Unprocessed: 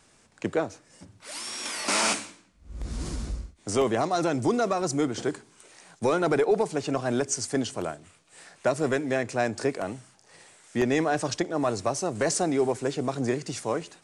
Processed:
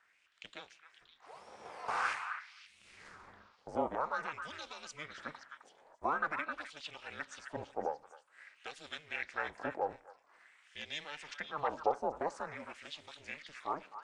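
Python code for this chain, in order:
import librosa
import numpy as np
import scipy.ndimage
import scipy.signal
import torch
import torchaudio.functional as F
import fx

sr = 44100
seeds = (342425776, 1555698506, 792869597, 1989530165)

y = fx.filter_lfo_bandpass(x, sr, shape='sine', hz=0.48, low_hz=650.0, high_hz=3400.0, q=4.1)
y = fx.echo_stepped(y, sr, ms=261, hz=1500.0, octaves=1.4, feedback_pct=70, wet_db=-6)
y = y * np.sin(2.0 * np.pi * 150.0 * np.arange(len(y)) / sr)
y = y * librosa.db_to_amplitude(3.0)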